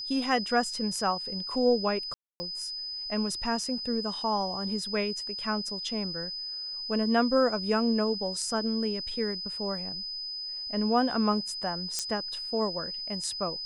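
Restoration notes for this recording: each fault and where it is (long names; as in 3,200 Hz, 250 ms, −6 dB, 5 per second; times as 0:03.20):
whistle 5,000 Hz −34 dBFS
0:02.14–0:02.40: drop-out 260 ms
0:11.99: click −14 dBFS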